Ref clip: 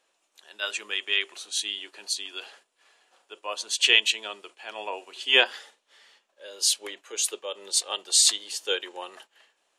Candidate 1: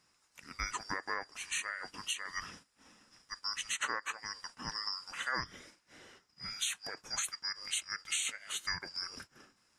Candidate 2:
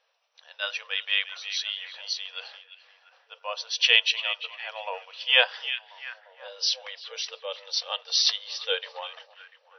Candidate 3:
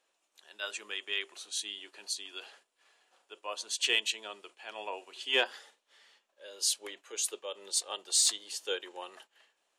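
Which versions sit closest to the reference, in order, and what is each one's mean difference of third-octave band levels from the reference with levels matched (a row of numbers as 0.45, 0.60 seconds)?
3, 2, 1; 2.0, 6.5, 12.5 decibels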